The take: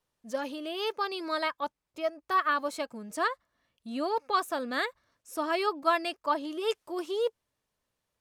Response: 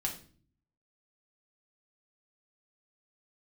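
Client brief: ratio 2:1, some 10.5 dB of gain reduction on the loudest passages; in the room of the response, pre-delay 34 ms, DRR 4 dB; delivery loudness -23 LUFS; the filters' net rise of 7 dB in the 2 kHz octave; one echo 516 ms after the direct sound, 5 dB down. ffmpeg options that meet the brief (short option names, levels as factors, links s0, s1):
-filter_complex "[0:a]equalizer=f=2000:t=o:g=9,acompressor=threshold=0.0126:ratio=2,aecho=1:1:516:0.562,asplit=2[s0][s1];[1:a]atrim=start_sample=2205,adelay=34[s2];[s1][s2]afir=irnorm=-1:irlink=0,volume=0.473[s3];[s0][s3]amix=inputs=2:normalize=0,volume=3.76"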